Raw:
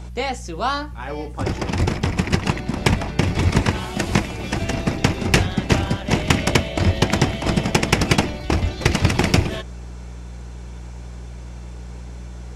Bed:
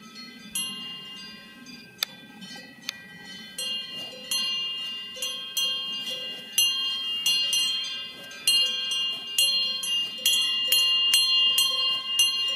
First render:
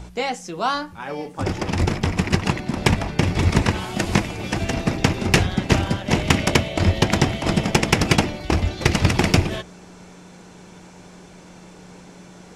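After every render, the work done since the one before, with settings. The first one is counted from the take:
hum removal 60 Hz, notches 2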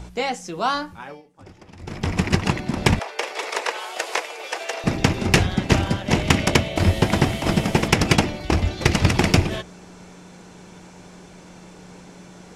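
0:00.90–0:02.15: duck −21 dB, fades 0.32 s linear
0:02.99–0:04.84: Chebyshev high-pass filter 450 Hz, order 4
0:06.76–0:07.88: linear delta modulator 64 kbit/s, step −31 dBFS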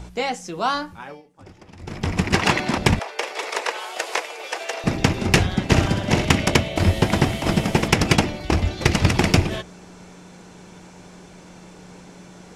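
0:02.34–0:02.78: mid-hump overdrive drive 16 dB, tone 6,200 Hz, clips at −5 dBFS
0:05.67–0:06.25: flutter between parallel walls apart 11 metres, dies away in 0.62 s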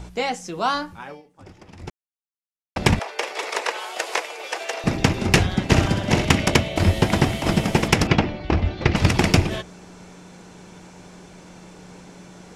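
0:01.90–0:02.76: silence
0:08.07–0:08.96: high-frequency loss of the air 200 metres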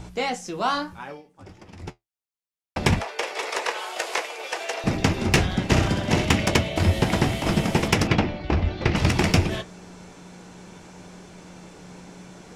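in parallel at −5.5 dB: soft clipping −20.5 dBFS, distortion −6 dB
on the sum: flanger 0.62 Hz, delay 8.8 ms, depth 8.8 ms, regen −55%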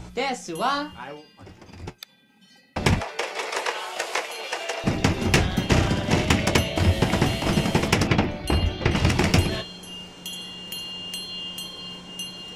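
mix in bed −13 dB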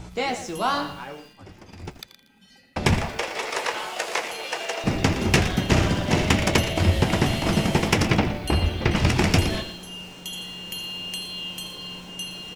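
echo with shifted repeats 82 ms, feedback 36%, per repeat −150 Hz, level −14 dB
feedback echo at a low word length 117 ms, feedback 35%, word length 7 bits, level −12.5 dB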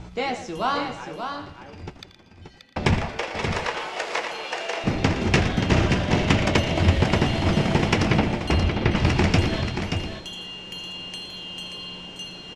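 high-frequency loss of the air 82 metres
single-tap delay 580 ms −7 dB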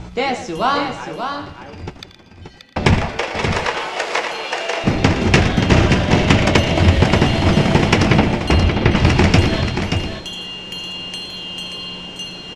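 level +7 dB
brickwall limiter −1 dBFS, peak gain reduction 2 dB

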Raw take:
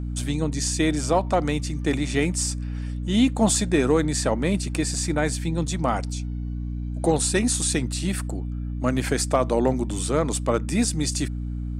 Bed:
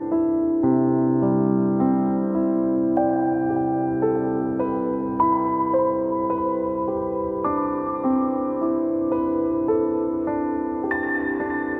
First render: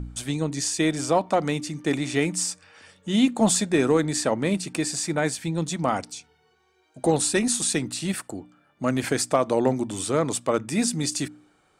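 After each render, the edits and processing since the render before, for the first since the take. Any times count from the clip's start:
hum removal 60 Hz, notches 5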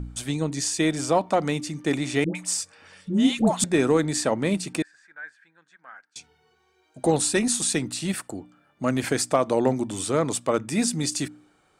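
0:02.24–0:03.64: all-pass dispersion highs, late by 110 ms, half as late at 660 Hz
0:04.82–0:06.16: resonant band-pass 1,600 Hz, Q 15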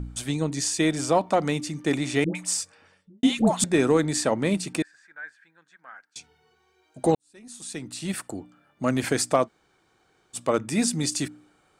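0:02.57–0:03.23: fade out and dull
0:07.15–0:08.25: fade in quadratic
0:09.46–0:10.36: fill with room tone, crossfade 0.06 s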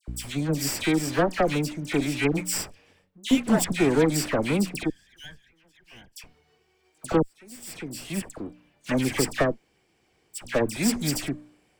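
lower of the sound and its delayed copy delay 0.38 ms
all-pass dispersion lows, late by 80 ms, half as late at 1,800 Hz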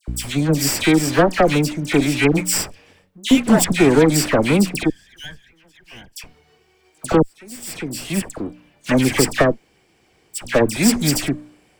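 level +8.5 dB
brickwall limiter −3 dBFS, peak gain reduction 2.5 dB

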